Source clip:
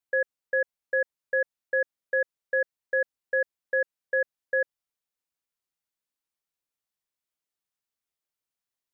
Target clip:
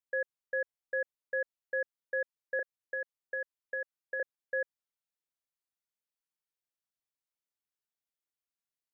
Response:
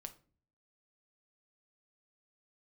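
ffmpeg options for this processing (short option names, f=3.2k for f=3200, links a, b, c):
-filter_complex "[0:a]asettb=1/sr,asplit=3[a][b][c];[a]atrim=end=2.594[d];[b]atrim=start=2.59:end=4.2,asetpts=PTS-STARTPTS,afade=t=in:d=0.004:c=qsin,afade=t=out:st=1.606:d=0.004:c=qsin,acrossover=split=840|1700[e][f][g];[e]acompressor=threshold=-35dB:ratio=4[h];[f]acompressor=threshold=-31dB:ratio=4[i];[g]acompressor=threshold=-35dB:ratio=4[j];[h][i][j]amix=inputs=3:normalize=0[k];[c]atrim=start=4.196[l];[d][k]acrossfade=d=0.004:c1=hsin:c2=qsin[m];[m][l]acrossfade=d=0.004:c1=qsin:c2=hsin,volume=-7.5dB"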